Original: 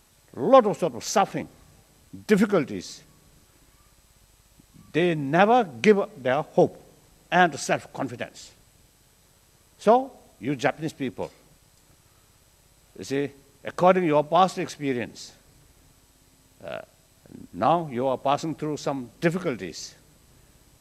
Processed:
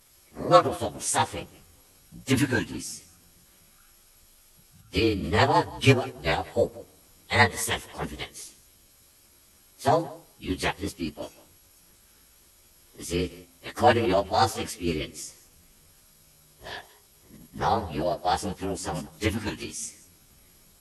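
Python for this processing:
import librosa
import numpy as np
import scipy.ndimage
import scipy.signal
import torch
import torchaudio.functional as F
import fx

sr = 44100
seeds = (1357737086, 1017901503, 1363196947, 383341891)

y = fx.partial_stretch(x, sr, pct=110)
y = fx.high_shelf(y, sr, hz=2300.0, db=9.5)
y = y + 10.0 ** (-20.5 / 20.0) * np.pad(y, (int(178 * sr / 1000.0), 0))[:len(y)]
y = fx.pitch_keep_formants(y, sr, semitones=-9.5)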